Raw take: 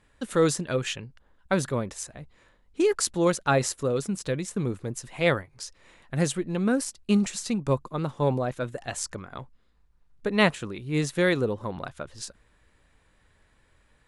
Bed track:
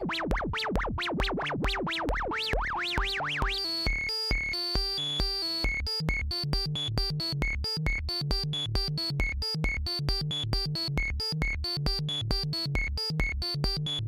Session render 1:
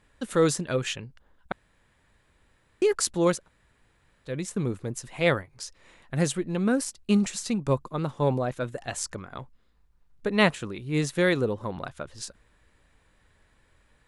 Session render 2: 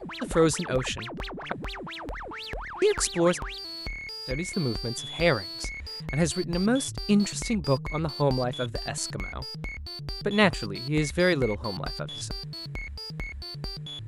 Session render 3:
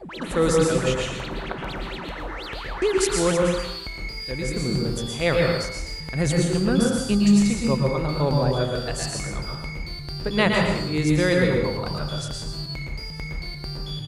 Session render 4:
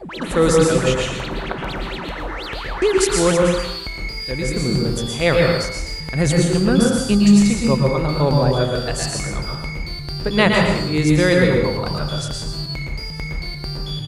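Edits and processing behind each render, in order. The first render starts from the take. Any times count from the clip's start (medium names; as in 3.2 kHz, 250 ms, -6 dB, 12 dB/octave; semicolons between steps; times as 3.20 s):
1.52–2.82 s: room tone; 3.40–4.31 s: room tone, crossfade 0.16 s
add bed track -6.5 dB
delay 113 ms -7 dB; plate-style reverb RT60 0.66 s, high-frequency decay 0.75×, pre-delay 115 ms, DRR 0.5 dB
trim +5 dB; peak limiter -1 dBFS, peak gain reduction 2.5 dB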